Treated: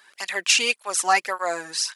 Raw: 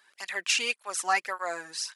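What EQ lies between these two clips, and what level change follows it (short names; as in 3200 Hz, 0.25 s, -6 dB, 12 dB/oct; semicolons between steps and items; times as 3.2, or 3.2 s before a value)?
dynamic EQ 1600 Hz, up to -4 dB, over -41 dBFS, Q 1; +8.5 dB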